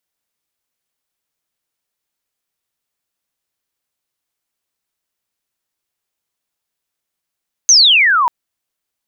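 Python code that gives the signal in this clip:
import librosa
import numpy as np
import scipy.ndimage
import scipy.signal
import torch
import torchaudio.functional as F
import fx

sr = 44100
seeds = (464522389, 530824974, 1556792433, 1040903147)

y = fx.chirp(sr, length_s=0.59, from_hz=6500.0, to_hz=920.0, law='logarithmic', from_db=-4.0, to_db=-10.5)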